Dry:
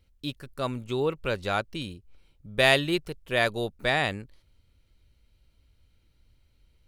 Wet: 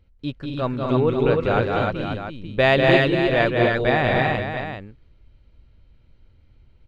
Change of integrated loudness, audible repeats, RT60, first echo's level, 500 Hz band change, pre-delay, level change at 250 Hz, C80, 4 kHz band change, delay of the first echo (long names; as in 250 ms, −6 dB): +7.0 dB, 5, no reverb audible, −4.0 dB, +9.5 dB, no reverb audible, +10.5 dB, no reverb audible, +1.0 dB, 194 ms